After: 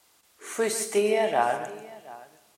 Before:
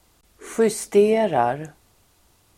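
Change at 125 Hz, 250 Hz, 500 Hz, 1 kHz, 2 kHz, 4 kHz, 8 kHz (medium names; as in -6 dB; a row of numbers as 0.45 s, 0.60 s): -12.5 dB, -10.0 dB, -6.0 dB, -3.0 dB, 0.0 dB, +0.5 dB, +1.0 dB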